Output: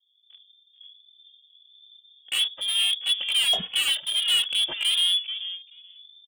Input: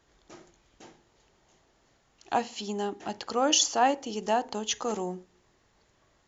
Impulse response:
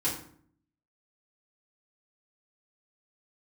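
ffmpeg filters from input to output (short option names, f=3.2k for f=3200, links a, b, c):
-filter_complex "[0:a]tiltshelf=f=1.1k:g=7.5,acrossover=split=320[a][b];[b]acrusher=bits=5:mix=0:aa=0.5[c];[a][c]amix=inputs=2:normalize=0,asoftclip=type=tanh:threshold=-24.5dB,asplit=2[d][e];[e]adynamicsmooth=sensitivity=3:basefreq=600,volume=0dB[f];[d][f]amix=inputs=2:normalize=0,asplit=2[g][h];[h]adelay=433,lowpass=f=1.2k:p=1,volume=-14dB,asplit=2[i][j];[j]adelay=433,lowpass=f=1.2k:p=1,volume=0.18[k];[g][i][k]amix=inputs=3:normalize=0,dynaudnorm=f=490:g=5:m=12dB,lowpass=f=3.1k:t=q:w=0.5098,lowpass=f=3.1k:t=q:w=0.6013,lowpass=f=3.1k:t=q:w=0.9,lowpass=f=3.1k:t=q:w=2.563,afreqshift=-3600,asoftclip=type=hard:threshold=-14dB,asplit=2[l][m];[m]adelay=2.4,afreqshift=1.4[n];[l][n]amix=inputs=2:normalize=1,volume=-3.5dB"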